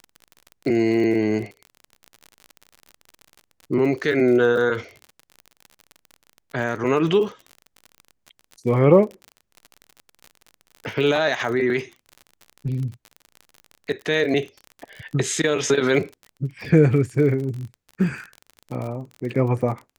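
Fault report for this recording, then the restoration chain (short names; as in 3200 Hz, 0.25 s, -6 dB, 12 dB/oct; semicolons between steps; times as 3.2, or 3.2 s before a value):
crackle 42/s -30 dBFS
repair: de-click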